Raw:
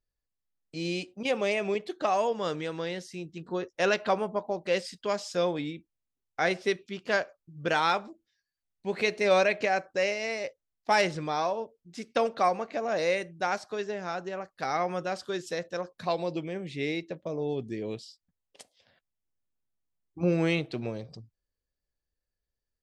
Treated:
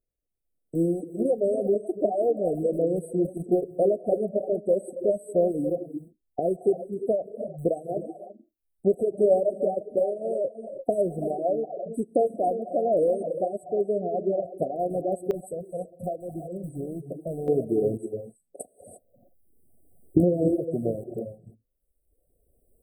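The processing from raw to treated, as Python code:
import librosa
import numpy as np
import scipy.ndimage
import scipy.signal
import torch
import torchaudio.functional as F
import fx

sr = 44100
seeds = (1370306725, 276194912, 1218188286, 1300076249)

y = fx.rattle_buzz(x, sr, strikes_db=-40.0, level_db=-24.0)
y = fx.recorder_agc(y, sr, target_db=-16.0, rise_db_per_s=11.0, max_gain_db=30)
y = fx.brickwall_bandstop(y, sr, low_hz=750.0, high_hz=7800.0)
y = fx.rev_gated(y, sr, seeds[0], gate_ms=370, shape='rising', drr_db=6.0)
y = fx.dereverb_blind(y, sr, rt60_s=1.0)
y = fx.peak_eq(y, sr, hz=390.0, db=fx.steps((0.0, 5.5), (15.31, -6.0), (17.48, 6.5)), octaves=1.6)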